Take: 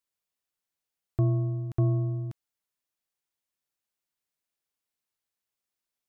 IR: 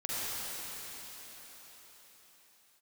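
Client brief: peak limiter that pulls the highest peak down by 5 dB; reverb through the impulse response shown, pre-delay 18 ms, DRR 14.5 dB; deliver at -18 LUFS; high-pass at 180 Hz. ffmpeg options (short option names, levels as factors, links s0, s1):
-filter_complex "[0:a]highpass=180,alimiter=level_in=1.19:limit=0.0631:level=0:latency=1,volume=0.841,asplit=2[s0][s1];[1:a]atrim=start_sample=2205,adelay=18[s2];[s1][s2]afir=irnorm=-1:irlink=0,volume=0.0841[s3];[s0][s3]amix=inputs=2:normalize=0,volume=8.91"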